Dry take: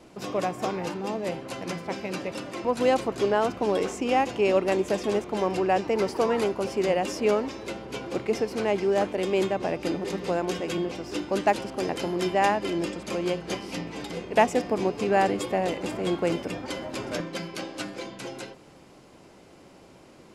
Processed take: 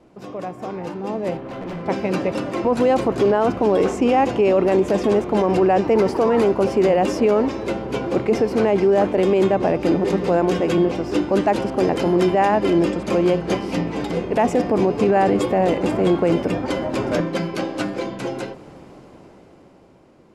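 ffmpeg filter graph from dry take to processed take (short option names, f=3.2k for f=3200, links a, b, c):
-filter_complex "[0:a]asettb=1/sr,asplit=3[a][b][c];[a]atrim=end=1.374[d];[b]atrim=start=1.37:end=1.86,asetpts=PTS-STARTPTS,afade=t=in:d=0.004:c=qsin,afade=t=out:st=0.486:d=0.004:c=qsin,lowpass=3.1k,asoftclip=type=hard:threshold=-37dB[e];[c]atrim=start=1.856[f];[d][e]acrossfade=d=0.004:c1=hsin:c2=qsin[g];[g][f]acrossfade=d=0.004:c1=qsin:c2=hsin,highshelf=f=2k:g=-11.5,alimiter=limit=-21dB:level=0:latency=1:release=13,dynaudnorm=f=210:g=13:m=12dB"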